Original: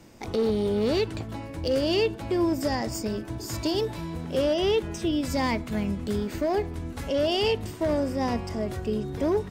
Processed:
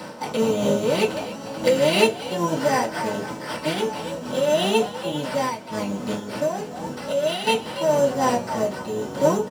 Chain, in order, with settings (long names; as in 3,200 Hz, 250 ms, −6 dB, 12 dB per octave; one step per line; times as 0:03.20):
sub-octave generator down 1 octave, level +3 dB
sample-rate reduction 6,800 Hz, jitter 0%
high-pass filter 750 Hz 12 dB per octave
upward compression, threshold −38 dBFS
dynamic equaliser 2,600 Hz, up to +6 dB, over −49 dBFS, Q 2.7
0:04.95–0:07.47: downward compressor 2.5 to 1, threshold −36 dBFS, peak gain reduction 8.5 dB
echo with shifted repeats 289 ms, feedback 35%, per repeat +110 Hz, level −12 dB
convolution reverb RT60 0.20 s, pre-delay 3 ms, DRR −7 dB
amplitude modulation by smooth noise, depth 65%
level −1 dB